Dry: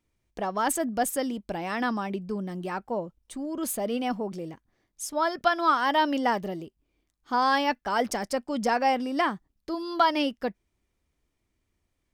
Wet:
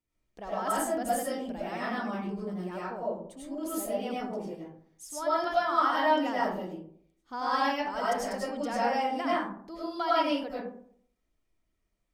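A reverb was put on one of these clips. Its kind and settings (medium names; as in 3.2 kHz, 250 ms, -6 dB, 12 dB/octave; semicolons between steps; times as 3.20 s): algorithmic reverb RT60 0.61 s, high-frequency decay 0.4×, pre-delay 60 ms, DRR -8 dB; trim -12 dB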